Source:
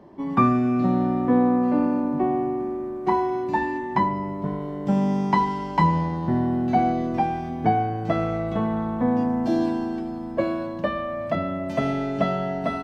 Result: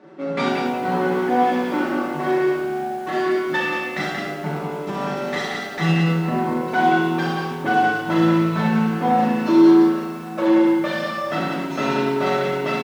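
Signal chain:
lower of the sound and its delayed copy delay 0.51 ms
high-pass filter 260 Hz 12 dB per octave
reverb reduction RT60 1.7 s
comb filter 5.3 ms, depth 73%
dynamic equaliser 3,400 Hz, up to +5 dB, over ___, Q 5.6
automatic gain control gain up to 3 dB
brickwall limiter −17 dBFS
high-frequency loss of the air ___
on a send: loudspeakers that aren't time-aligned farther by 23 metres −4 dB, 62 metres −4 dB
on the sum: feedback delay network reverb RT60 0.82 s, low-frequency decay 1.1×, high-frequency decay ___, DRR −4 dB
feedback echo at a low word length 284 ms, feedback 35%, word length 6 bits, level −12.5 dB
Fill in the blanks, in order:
−52 dBFS, 59 metres, 0.75×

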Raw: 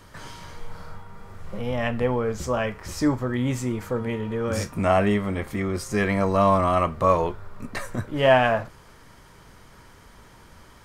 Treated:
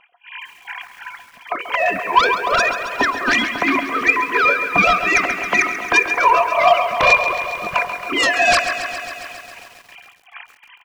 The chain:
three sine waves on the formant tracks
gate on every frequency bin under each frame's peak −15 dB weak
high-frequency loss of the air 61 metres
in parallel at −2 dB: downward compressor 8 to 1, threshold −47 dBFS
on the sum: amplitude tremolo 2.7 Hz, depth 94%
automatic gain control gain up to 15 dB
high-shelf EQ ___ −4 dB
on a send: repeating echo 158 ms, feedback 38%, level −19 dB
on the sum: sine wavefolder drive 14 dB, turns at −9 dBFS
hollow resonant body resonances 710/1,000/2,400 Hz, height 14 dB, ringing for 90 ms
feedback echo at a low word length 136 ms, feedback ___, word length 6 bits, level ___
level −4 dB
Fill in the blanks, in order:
2,200 Hz, 80%, −11 dB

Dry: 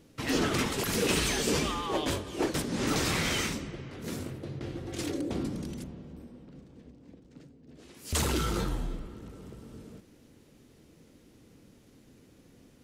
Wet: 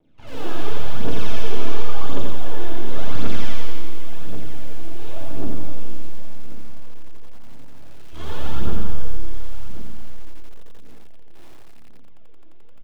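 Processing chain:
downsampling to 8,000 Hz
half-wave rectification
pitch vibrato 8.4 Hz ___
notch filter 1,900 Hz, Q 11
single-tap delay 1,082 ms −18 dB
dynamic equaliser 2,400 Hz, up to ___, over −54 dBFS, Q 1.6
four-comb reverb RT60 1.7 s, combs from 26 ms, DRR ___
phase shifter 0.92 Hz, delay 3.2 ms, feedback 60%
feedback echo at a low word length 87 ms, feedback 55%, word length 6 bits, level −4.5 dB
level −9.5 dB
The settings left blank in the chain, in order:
41 cents, −6 dB, −10 dB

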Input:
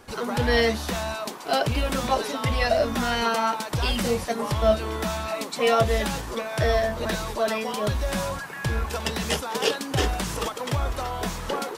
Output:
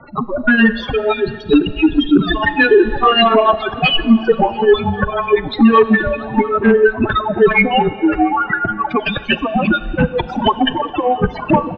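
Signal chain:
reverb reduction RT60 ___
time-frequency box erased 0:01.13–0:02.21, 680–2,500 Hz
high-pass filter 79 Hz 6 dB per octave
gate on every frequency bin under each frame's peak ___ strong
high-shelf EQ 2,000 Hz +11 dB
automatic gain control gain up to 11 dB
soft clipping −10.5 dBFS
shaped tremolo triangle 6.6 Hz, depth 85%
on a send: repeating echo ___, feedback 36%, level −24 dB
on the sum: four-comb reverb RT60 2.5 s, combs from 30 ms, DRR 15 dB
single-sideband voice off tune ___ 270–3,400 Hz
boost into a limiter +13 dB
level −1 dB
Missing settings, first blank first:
1.7 s, −10 dB, 691 ms, −240 Hz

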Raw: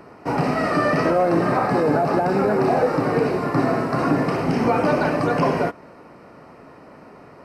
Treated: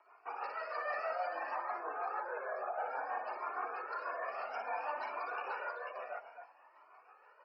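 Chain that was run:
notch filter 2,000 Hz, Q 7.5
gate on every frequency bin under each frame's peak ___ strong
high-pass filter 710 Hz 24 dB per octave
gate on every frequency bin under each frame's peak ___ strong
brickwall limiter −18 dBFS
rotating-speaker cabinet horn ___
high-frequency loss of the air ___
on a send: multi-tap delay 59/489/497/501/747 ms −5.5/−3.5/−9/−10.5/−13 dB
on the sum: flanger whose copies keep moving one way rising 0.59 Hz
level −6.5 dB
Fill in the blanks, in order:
−30 dB, −40 dB, 6.3 Hz, 83 metres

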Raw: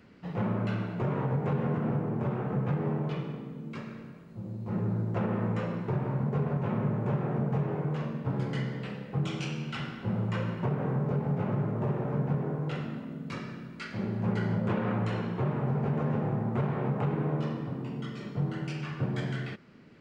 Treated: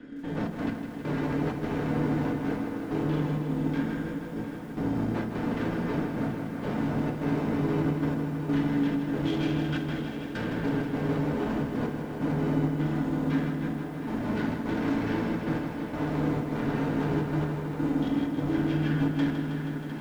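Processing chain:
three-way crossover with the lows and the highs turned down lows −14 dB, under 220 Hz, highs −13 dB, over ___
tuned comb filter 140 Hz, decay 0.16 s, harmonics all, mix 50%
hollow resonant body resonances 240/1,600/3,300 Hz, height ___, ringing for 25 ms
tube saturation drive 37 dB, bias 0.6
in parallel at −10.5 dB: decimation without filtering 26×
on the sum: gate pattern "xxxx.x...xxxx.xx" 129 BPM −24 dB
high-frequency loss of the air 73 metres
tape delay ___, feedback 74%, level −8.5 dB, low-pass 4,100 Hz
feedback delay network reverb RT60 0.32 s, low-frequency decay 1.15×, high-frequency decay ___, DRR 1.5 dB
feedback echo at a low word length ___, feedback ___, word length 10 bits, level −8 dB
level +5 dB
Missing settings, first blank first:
4,500 Hz, 17 dB, 705 ms, 0.65×, 159 ms, 80%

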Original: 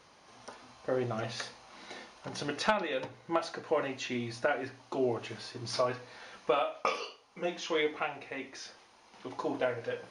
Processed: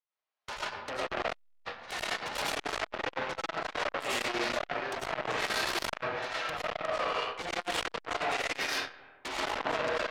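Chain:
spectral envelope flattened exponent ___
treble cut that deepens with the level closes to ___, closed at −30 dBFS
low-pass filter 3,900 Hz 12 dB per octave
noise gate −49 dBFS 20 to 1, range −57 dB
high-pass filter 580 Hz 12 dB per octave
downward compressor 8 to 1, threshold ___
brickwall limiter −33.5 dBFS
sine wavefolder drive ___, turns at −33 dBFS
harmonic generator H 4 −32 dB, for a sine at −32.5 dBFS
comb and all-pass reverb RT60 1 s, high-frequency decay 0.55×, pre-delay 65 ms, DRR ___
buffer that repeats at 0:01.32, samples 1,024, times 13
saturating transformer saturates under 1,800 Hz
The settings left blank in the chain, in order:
0.6, 1,200 Hz, −43 dBFS, 13 dB, −8.5 dB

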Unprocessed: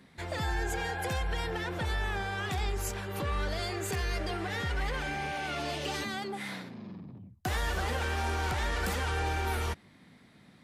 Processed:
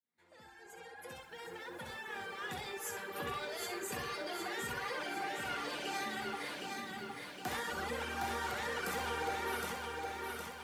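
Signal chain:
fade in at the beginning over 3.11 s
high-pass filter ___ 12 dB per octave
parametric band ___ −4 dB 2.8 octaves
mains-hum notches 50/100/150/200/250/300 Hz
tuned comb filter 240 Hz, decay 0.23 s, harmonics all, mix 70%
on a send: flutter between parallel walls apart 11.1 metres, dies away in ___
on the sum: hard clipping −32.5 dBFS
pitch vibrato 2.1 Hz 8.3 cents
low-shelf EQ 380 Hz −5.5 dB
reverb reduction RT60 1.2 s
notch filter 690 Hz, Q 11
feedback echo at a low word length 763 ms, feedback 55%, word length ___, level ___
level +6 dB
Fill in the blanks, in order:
150 Hz, 4,300 Hz, 0.81 s, 12 bits, −3.5 dB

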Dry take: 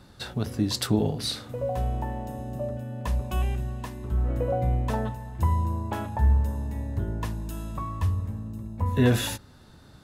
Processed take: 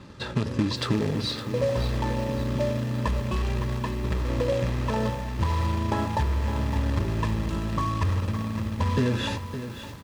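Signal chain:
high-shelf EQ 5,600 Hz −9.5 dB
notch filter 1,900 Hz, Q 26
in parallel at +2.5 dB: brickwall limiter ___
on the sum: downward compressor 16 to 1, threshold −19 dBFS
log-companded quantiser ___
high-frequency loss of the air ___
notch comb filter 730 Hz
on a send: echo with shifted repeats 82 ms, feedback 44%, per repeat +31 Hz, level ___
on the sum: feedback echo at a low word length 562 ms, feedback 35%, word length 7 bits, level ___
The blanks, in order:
−19 dBFS, 4 bits, 89 metres, −21.5 dB, −10 dB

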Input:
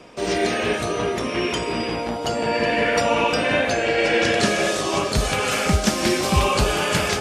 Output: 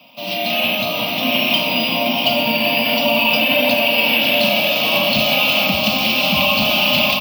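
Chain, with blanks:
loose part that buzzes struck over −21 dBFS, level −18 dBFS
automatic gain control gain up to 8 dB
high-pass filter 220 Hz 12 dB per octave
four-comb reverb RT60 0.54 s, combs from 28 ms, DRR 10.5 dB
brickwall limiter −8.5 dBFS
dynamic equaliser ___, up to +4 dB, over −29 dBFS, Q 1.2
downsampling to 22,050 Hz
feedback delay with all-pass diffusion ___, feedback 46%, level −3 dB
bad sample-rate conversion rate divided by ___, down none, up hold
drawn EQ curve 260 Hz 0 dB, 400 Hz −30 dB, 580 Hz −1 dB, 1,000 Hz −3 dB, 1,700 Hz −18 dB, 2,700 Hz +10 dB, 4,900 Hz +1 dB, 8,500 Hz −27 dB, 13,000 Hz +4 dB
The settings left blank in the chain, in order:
310 Hz, 728 ms, 3×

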